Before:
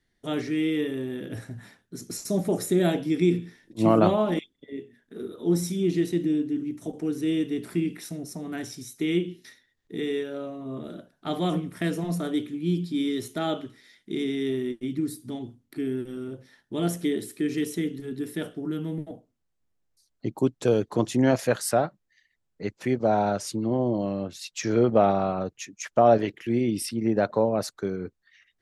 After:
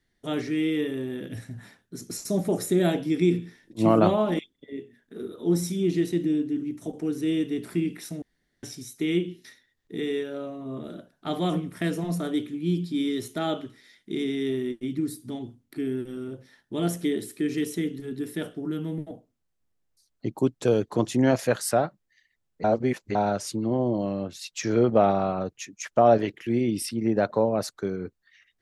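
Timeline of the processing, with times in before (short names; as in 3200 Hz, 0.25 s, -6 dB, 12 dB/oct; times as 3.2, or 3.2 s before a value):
1.27–1.54 spectral gain 280–1700 Hz -6 dB
8.22–8.63 room tone
22.64–23.15 reverse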